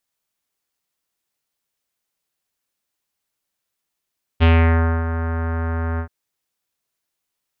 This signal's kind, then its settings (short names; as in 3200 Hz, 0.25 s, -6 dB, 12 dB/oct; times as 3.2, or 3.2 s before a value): synth note square E2 24 dB/oct, low-pass 1600 Hz, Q 2.2, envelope 1 oct, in 0.42 s, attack 29 ms, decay 0.61 s, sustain -11 dB, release 0.09 s, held 1.59 s